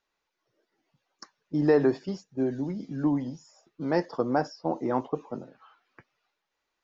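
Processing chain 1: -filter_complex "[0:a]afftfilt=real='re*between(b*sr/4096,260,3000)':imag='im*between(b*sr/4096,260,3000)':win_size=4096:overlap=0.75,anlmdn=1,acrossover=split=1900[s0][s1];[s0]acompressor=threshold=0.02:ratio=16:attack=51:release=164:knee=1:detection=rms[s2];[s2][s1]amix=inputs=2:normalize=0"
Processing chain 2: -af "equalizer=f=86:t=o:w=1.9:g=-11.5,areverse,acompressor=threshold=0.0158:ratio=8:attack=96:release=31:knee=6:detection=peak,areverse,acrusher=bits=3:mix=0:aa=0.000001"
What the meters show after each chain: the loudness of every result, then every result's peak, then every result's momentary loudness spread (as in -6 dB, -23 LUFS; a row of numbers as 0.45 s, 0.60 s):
-38.5 LUFS, -34.5 LUFS; -19.0 dBFS, -17.0 dBFS; 8 LU, 7 LU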